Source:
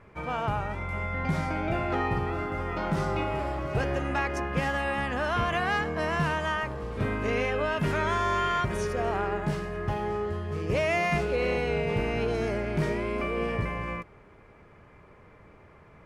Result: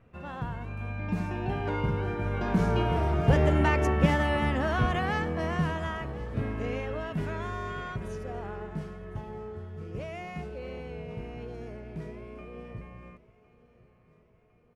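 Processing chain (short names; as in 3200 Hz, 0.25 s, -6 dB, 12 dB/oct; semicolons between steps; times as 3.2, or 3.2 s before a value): Doppler pass-by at 3.98, 19 m/s, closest 19 m; low shelf 450 Hz +9.5 dB; on a send: feedback echo 1.15 s, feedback 51%, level -20 dB; on the sum: speed mistake 44.1 kHz file played as 48 kHz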